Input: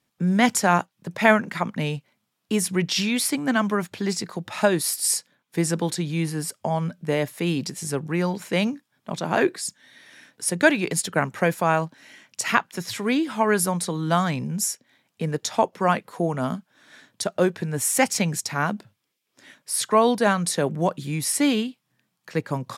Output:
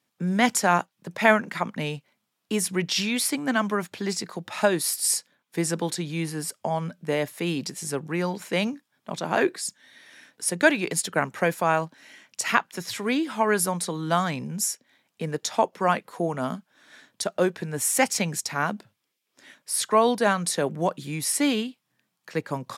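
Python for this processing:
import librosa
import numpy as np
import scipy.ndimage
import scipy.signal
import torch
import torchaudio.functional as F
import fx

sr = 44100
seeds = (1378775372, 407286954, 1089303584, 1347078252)

y = fx.highpass(x, sr, hz=200.0, slope=6)
y = F.gain(torch.from_numpy(y), -1.0).numpy()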